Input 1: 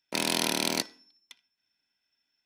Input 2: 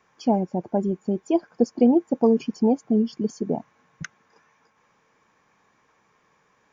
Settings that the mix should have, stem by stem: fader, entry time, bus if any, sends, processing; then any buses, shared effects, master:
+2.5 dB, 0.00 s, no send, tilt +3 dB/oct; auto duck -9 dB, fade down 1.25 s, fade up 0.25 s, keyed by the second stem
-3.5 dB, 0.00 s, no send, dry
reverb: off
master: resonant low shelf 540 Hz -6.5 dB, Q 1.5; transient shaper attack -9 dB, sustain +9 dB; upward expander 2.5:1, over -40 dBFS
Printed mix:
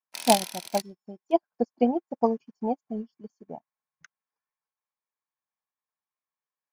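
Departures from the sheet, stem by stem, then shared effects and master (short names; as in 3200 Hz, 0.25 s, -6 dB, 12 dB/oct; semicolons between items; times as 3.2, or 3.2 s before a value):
stem 2 -3.5 dB -> +5.0 dB; master: missing transient shaper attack -9 dB, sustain +9 dB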